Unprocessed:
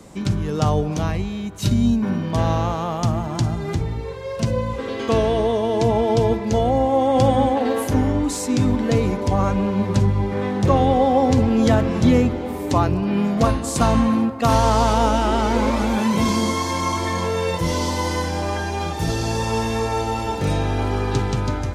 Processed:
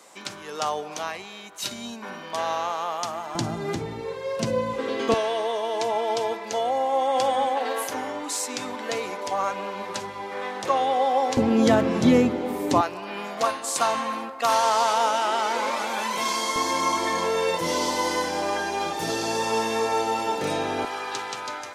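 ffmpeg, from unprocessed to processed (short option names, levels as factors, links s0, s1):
-af "asetnsamples=n=441:p=0,asendcmd='3.35 highpass f 230;5.14 highpass f 710;11.37 highpass f 210;12.81 highpass f 720;16.56 highpass f 330;20.85 highpass f 840',highpass=740"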